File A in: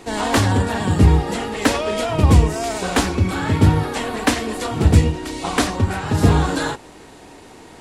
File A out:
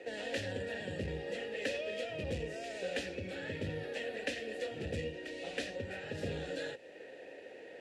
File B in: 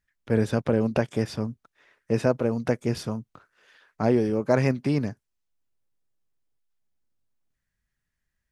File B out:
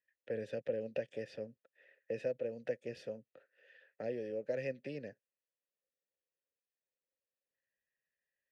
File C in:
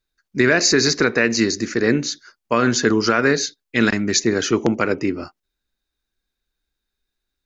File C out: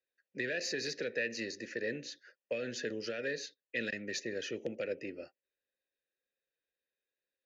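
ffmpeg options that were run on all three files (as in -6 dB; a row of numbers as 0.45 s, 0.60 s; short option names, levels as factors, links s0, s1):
-filter_complex "[0:a]aeval=exprs='(tanh(2*val(0)+0.25)-tanh(0.25))/2':c=same,acrossover=split=200|3000[s0][s1][s2];[s1]acompressor=threshold=0.0158:ratio=3[s3];[s0][s3][s2]amix=inputs=3:normalize=0,asplit=3[s4][s5][s6];[s4]bandpass=f=530:t=q:w=8,volume=1[s7];[s5]bandpass=f=1840:t=q:w=8,volume=0.501[s8];[s6]bandpass=f=2480:t=q:w=8,volume=0.355[s9];[s7][s8][s9]amix=inputs=3:normalize=0,volume=1.68"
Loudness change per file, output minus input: -21.0 LU, -15.5 LU, -19.5 LU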